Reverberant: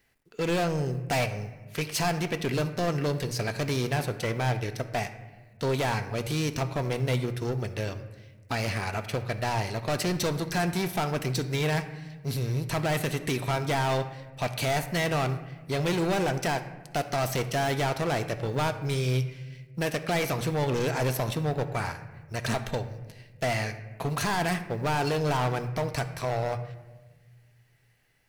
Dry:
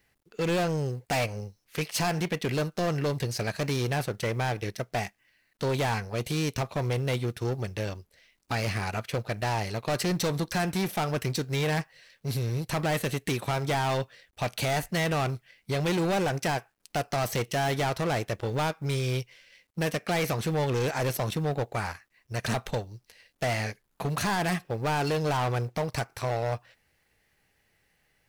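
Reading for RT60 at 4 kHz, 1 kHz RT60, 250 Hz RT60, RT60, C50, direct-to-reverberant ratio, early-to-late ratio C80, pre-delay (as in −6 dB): 0.80 s, 1.2 s, 1.8 s, 1.3 s, 11.5 dB, 9.0 dB, 13.5 dB, 3 ms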